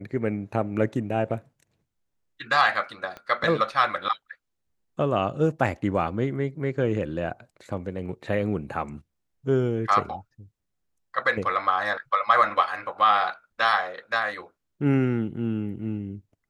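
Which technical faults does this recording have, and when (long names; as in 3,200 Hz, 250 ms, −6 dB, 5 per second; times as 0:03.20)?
0:03.17: click −24 dBFS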